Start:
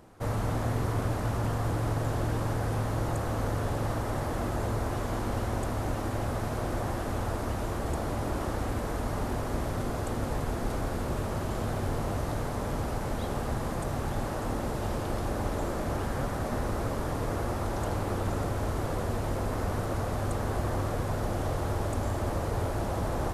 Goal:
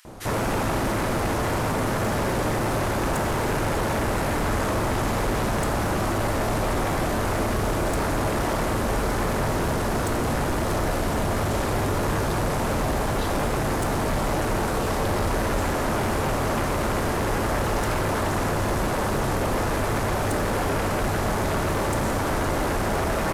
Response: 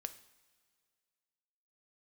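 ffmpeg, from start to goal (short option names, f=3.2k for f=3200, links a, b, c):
-filter_complex "[0:a]acrossover=split=1800[a][b];[a]adelay=50[c];[c][b]amix=inputs=2:normalize=0,aeval=exprs='0.158*sin(PI/2*5.62*val(0)/0.158)':c=same[d];[1:a]atrim=start_sample=2205[e];[d][e]afir=irnorm=-1:irlink=0,volume=-2dB"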